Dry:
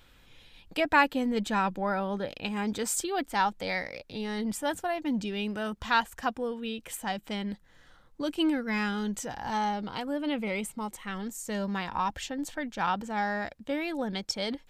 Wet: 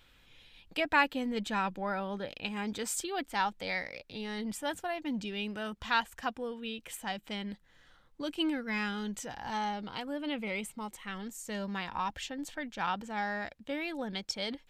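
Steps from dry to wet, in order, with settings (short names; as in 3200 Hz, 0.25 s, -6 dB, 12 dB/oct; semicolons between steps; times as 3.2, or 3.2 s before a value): bell 2800 Hz +4.5 dB 1.6 oct; gain -5.5 dB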